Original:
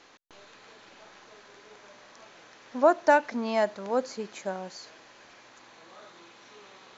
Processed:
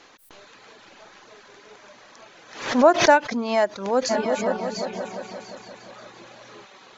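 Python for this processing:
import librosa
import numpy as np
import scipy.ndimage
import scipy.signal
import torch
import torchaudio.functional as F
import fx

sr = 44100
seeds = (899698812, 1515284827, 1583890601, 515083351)

y = fx.echo_opening(x, sr, ms=175, hz=200, octaves=2, feedback_pct=70, wet_db=0, at=(4.09, 6.64), fade=0.02)
y = fx.dereverb_blind(y, sr, rt60_s=0.54)
y = fx.pre_swell(y, sr, db_per_s=99.0)
y = y * librosa.db_to_amplitude(5.0)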